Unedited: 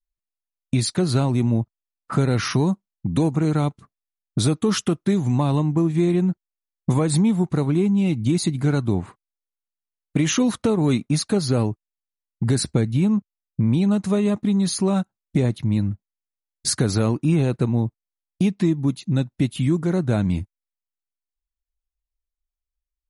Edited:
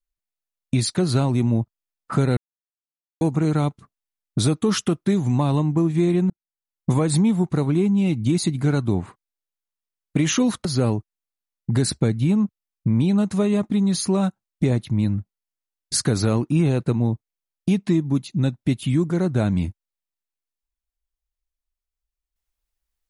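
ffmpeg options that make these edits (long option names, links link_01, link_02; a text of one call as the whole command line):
ffmpeg -i in.wav -filter_complex "[0:a]asplit=5[link_01][link_02][link_03][link_04][link_05];[link_01]atrim=end=2.37,asetpts=PTS-STARTPTS,afade=type=out:start_time=2.366:duration=0.004:curve=hsin[link_06];[link_02]atrim=start=2.37:end=3.21,asetpts=PTS-STARTPTS,volume=0[link_07];[link_03]atrim=start=3.21:end=6.3,asetpts=PTS-STARTPTS,afade=type=in:duration=0.004:curve=hsin,afade=type=out:start_time=3.086:duration=0.004:curve=hsin[link_08];[link_04]atrim=start=6.3:end=10.652,asetpts=PTS-STARTPTS,afade=type=in:duration=0.6[link_09];[link_05]atrim=start=11.378[link_10];[link_06][link_07][link_08][link_09]concat=n=4:v=0:a=1[link_11];[link_11][link_10]acrossfade=duration=0.004:curve1=hsin:curve2=hsin" out.wav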